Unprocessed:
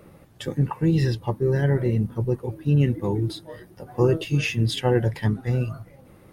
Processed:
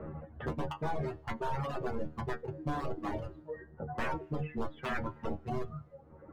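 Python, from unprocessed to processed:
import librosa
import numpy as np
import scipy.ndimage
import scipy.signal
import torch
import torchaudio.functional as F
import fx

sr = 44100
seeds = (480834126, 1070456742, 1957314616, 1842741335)

y = scipy.signal.sosfilt(scipy.signal.butter(4, 1400.0, 'lowpass', fs=sr, output='sos'), x)
y = 10.0 ** (-23.0 / 20.0) * (np.abs((y / 10.0 ** (-23.0 / 20.0) + 3.0) % 4.0 - 2.0) - 1.0)
y = fx.stiff_resonator(y, sr, f0_hz=75.0, decay_s=0.36, stiffness=0.002)
y = fx.rev_fdn(y, sr, rt60_s=1.1, lf_ratio=1.0, hf_ratio=1.0, size_ms=30.0, drr_db=15.0)
y = fx.dereverb_blind(y, sr, rt60_s=1.6)
y = fx.band_squash(y, sr, depth_pct=70)
y = F.gain(torch.from_numpy(y), 4.5).numpy()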